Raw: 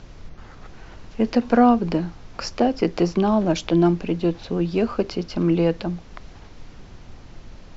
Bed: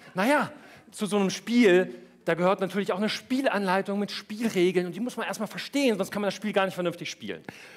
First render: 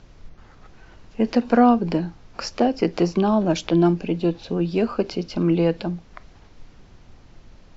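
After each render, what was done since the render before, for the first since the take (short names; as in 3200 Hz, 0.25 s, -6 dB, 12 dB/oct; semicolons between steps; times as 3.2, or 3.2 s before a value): noise print and reduce 6 dB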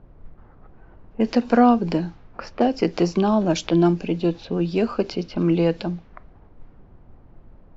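low-pass opened by the level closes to 880 Hz, open at -17.5 dBFS; high shelf 4800 Hz +4 dB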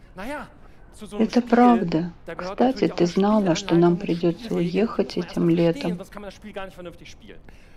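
add bed -9.5 dB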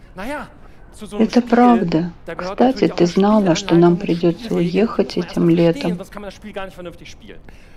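gain +5.5 dB; limiter -1 dBFS, peak gain reduction 2.5 dB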